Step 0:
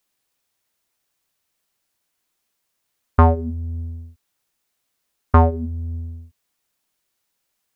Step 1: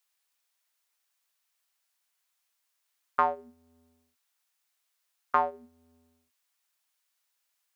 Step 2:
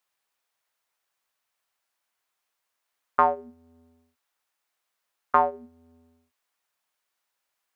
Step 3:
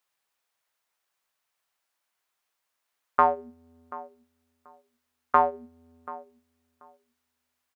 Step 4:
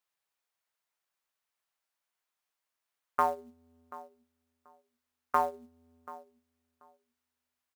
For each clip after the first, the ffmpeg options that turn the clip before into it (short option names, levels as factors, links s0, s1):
-af "highpass=840,volume=0.668"
-af "highshelf=f=2100:g=-11.5,volume=2.24"
-filter_complex "[0:a]asplit=2[s0][s1];[s1]adelay=734,lowpass=f=1400:p=1,volume=0.141,asplit=2[s2][s3];[s3]adelay=734,lowpass=f=1400:p=1,volume=0.2[s4];[s0][s2][s4]amix=inputs=3:normalize=0"
-af "acrusher=bits=6:mode=log:mix=0:aa=0.000001,volume=0.447"